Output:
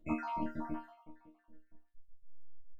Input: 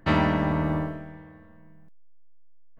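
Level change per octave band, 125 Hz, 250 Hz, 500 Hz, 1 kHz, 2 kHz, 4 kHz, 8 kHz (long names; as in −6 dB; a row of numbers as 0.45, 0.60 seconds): −24.0 dB, −13.5 dB, −18.0 dB, −11.0 dB, −19.0 dB, below −25 dB, can't be measured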